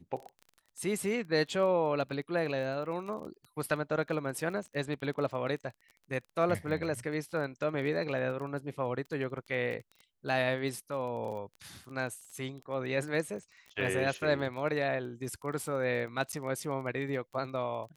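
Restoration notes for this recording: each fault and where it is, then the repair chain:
crackle 23/s -40 dBFS
16.32–16.33 gap 8.2 ms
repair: de-click; interpolate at 16.32, 8.2 ms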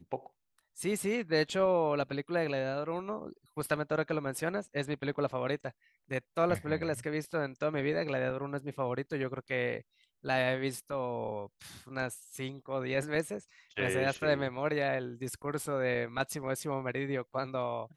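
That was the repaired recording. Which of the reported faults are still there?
none

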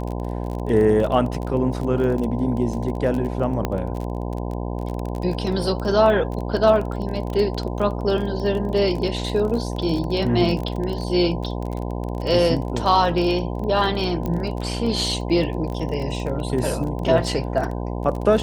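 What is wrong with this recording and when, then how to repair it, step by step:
buzz 60 Hz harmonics 17 -27 dBFS
crackle 26/s -26 dBFS
3.65 pop -9 dBFS
14.26 pop -14 dBFS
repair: de-click; de-hum 60 Hz, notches 17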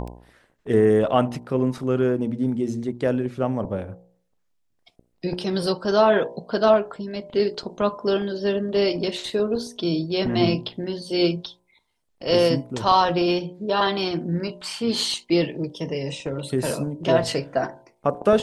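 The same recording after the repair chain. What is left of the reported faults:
3.65 pop

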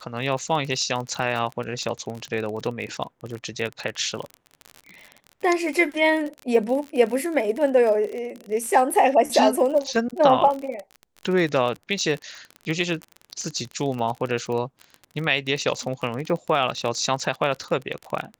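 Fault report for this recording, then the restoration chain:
crackle 40/s -28 dBFS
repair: de-click

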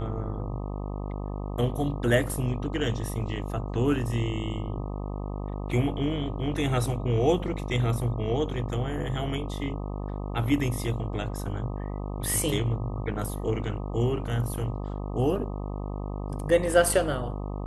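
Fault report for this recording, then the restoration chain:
buzz 50 Hz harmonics 25 -33 dBFS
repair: de-hum 50 Hz, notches 25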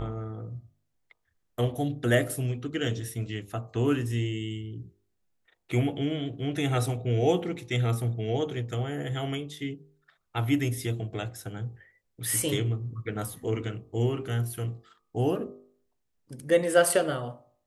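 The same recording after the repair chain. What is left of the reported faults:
none

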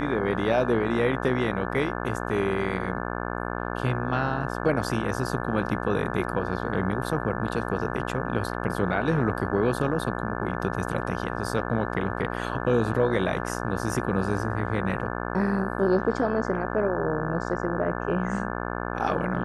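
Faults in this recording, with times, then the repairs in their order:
buzz 60 Hz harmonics 29 -31 dBFS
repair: de-hum 60 Hz, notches 29

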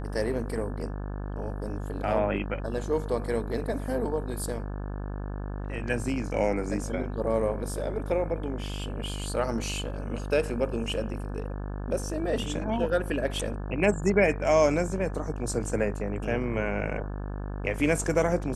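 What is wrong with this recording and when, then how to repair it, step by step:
buzz 50 Hz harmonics 35 -34 dBFS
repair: de-hum 50 Hz, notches 35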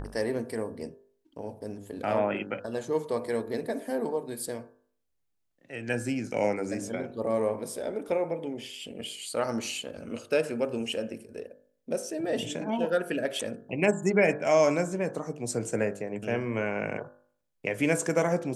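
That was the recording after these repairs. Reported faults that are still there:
none

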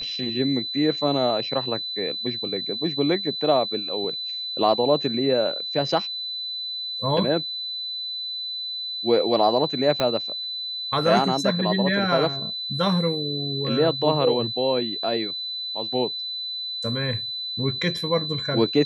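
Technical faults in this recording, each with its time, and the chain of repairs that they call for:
tone 4000 Hz -28 dBFS
10 pop -9 dBFS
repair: de-click; notch 4000 Hz, Q 30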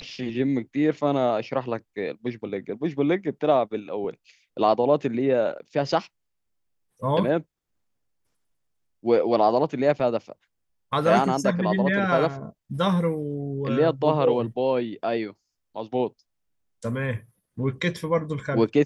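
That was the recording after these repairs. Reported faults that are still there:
10 pop

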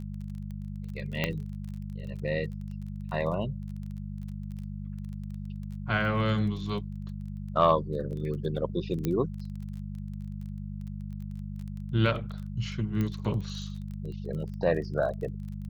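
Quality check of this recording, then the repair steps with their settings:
crackle 21/s -38 dBFS
hum 50 Hz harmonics 4 -37 dBFS
1.24 pop -13 dBFS
9.05 pop -16 dBFS
13.01 pop -19 dBFS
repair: de-click; de-hum 50 Hz, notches 4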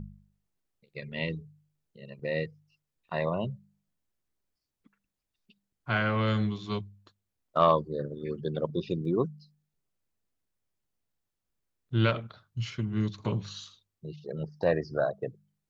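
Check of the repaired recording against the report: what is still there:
9.05 pop
13.01 pop

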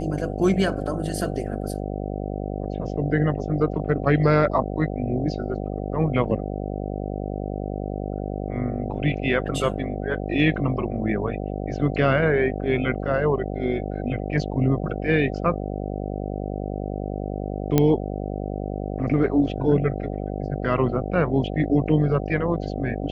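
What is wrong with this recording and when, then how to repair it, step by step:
buzz 50 Hz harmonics 15 -29 dBFS
17.78 pop -5 dBFS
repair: de-click; de-hum 50 Hz, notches 15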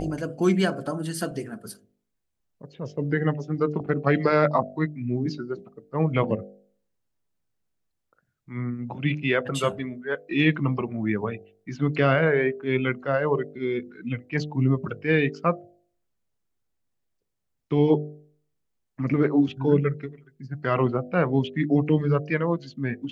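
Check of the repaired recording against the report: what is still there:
none

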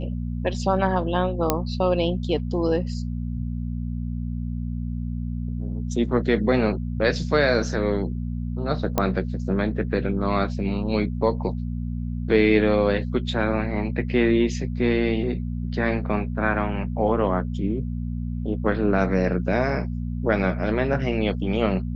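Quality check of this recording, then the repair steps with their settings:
hum 60 Hz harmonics 4 -28 dBFS
1.5 pop -4 dBFS
8.98 pop -7 dBFS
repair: de-click; de-hum 60 Hz, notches 4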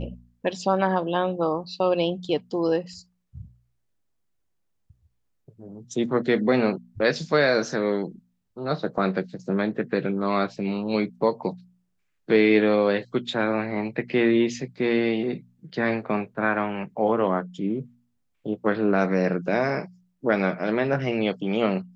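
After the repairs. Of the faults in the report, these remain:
none

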